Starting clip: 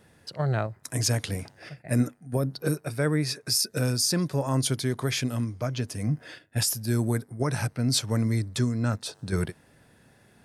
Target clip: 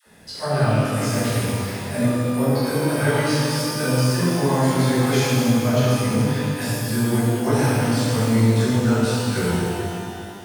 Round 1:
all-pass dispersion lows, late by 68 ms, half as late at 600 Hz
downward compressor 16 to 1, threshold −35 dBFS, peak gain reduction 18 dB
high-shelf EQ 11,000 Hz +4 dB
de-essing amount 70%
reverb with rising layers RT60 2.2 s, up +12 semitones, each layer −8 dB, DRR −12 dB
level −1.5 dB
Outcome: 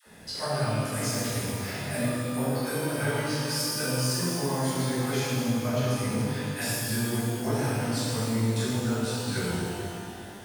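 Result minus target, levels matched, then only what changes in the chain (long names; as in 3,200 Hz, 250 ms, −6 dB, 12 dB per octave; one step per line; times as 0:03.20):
downward compressor: peak gain reduction +10 dB
change: downward compressor 16 to 1, threshold −24.5 dBFS, peak gain reduction 8.5 dB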